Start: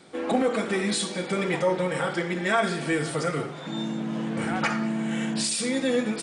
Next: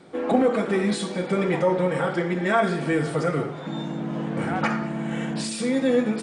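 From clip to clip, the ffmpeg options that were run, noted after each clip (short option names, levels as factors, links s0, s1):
-af "highshelf=f=2200:g=-11.5,bandreject=f=110.6:t=h:w=4,bandreject=f=221.2:t=h:w=4,bandreject=f=331.8:t=h:w=4,bandreject=f=442.4:t=h:w=4,bandreject=f=553:t=h:w=4,bandreject=f=663.6:t=h:w=4,bandreject=f=774.2:t=h:w=4,bandreject=f=884.8:t=h:w=4,bandreject=f=995.4:t=h:w=4,bandreject=f=1106:t=h:w=4,bandreject=f=1216.6:t=h:w=4,bandreject=f=1327.2:t=h:w=4,bandreject=f=1437.8:t=h:w=4,bandreject=f=1548.4:t=h:w=4,bandreject=f=1659:t=h:w=4,bandreject=f=1769.6:t=h:w=4,bandreject=f=1880.2:t=h:w=4,bandreject=f=1990.8:t=h:w=4,bandreject=f=2101.4:t=h:w=4,bandreject=f=2212:t=h:w=4,bandreject=f=2322.6:t=h:w=4,bandreject=f=2433.2:t=h:w=4,bandreject=f=2543.8:t=h:w=4,bandreject=f=2654.4:t=h:w=4,bandreject=f=2765:t=h:w=4,bandreject=f=2875.6:t=h:w=4,bandreject=f=2986.2:t=h:w=4,volume=1.68"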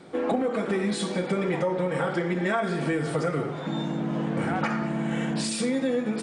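-af "acompressor=threshold=0.0631:ratio=6,volume=1.19"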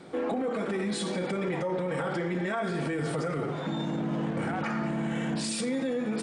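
-af "alimiter=limit=0.0708:level=0:latency=1:release=21"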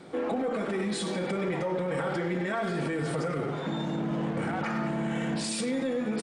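-filter_complex "[0:a]asplit=2[s0][s1];[s1]adelay=100,highpass=300,lowpass=3400,asoftclip=type=hard:threshold=0.0251,volume=0.447[s2];[s0][s2]amix=inputs=2:normalize=0"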